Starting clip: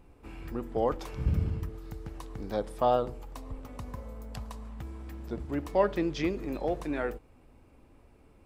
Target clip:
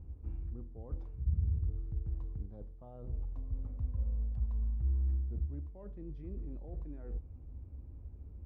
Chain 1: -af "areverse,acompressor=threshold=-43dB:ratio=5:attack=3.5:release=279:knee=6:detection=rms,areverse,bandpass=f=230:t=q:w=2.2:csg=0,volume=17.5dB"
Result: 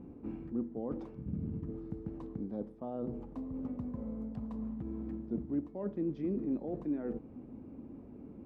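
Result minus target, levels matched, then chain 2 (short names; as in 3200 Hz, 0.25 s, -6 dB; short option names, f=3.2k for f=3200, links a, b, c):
250 Hz band +16.0 dB
-af "areverse,acompressor=threshold=-43dB:ratio=5:attack=3.5:release=279:knee=6:detection=rms,areverse,bandpass=f=65:t=q:w=2.2:csg=0,volume=17.5dB"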